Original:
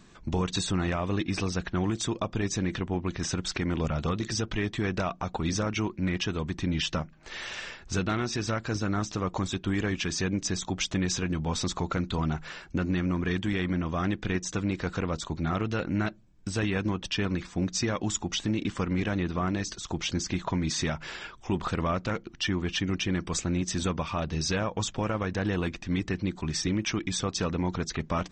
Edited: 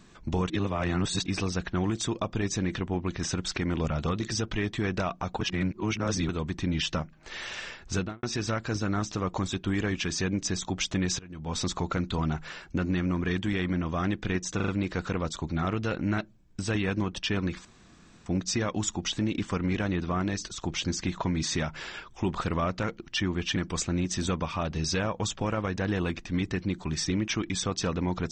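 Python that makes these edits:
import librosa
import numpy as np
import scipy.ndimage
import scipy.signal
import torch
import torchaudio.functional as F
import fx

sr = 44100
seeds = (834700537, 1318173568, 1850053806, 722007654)

y = fx.studio_fade_out(x, sr, start_s=7.95, length_s=0.28)
y = fx.edit(y, sr, fx.reverse_span(start_s=0.5, length_s=0.76),
    fx.reverse_span(start_s=5.41, length_s=0.88),
    fx.fade_in_from(start_s=11.19, length_s=0.39, curve='qua', floor_db=-18.5),
    fx.stutter(start_s=14.56, slice_s=0.04, count=4),
    fx.insert_room_tone(at_s=17.53, length_s=0.61),
    fx.cut(start_s=22.83, length_s=0.3), tone=tone)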